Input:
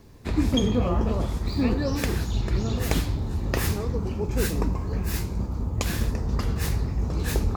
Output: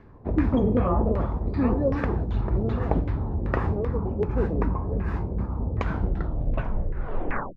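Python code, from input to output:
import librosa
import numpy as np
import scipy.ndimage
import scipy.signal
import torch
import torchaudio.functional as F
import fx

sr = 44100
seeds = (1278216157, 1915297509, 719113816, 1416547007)

y = fx.tape_stop_end(x, sr, length_s=1.81)
y = fx.filter_lfo_lowpass(y, sr, shape='saw_down', hz=2.6, low_hz=470.0, high_hz=1900.0, q=1.9)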